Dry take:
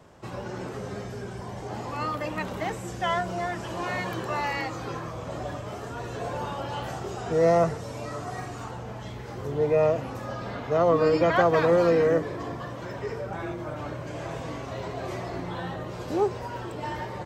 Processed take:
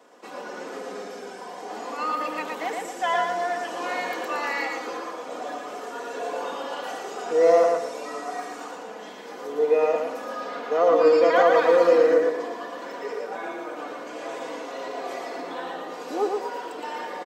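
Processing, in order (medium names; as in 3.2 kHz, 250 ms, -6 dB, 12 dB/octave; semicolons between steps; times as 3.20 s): high-pass 300 Hz 24 dB/octave; comb 4.1 ms, depth 53%; feedback delay 115 ms, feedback 33%, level -3.5 dB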